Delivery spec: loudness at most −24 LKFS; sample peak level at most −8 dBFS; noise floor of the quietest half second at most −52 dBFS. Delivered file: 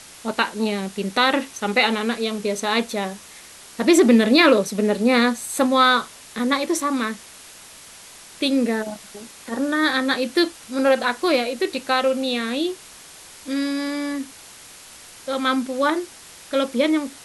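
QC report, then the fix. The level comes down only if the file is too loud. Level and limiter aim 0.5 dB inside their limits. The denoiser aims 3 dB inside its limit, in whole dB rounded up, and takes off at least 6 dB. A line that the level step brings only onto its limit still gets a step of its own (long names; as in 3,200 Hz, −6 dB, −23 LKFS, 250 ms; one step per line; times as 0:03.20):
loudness −21.0 LKFS: out of spec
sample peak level −3.0 dBFS: out of spec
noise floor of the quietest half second −44 dBFS: out of spec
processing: broadband denoise 8 dB, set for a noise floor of −44 dBFS
level −3.5 dB
brickwall limiter −8.5 dBFS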